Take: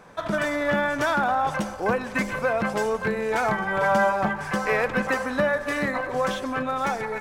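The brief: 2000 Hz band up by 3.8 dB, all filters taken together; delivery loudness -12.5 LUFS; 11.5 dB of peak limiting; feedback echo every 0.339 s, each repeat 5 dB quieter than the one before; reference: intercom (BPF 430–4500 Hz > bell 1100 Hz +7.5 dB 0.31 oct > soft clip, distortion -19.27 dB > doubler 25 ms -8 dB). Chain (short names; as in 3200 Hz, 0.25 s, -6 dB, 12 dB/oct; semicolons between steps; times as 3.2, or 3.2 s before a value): bell 2000 Hz +4.5 dB; limiter -20.5 dBFS; BPF 430–4500 Hz; bell 1100 Hz +7.5 dB 0.31 oct; feedback echo 0.339 s, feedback 56%, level -5 dB; soft clip -20 dBFS; doubler 25 ms -8 dB; gain +15 dB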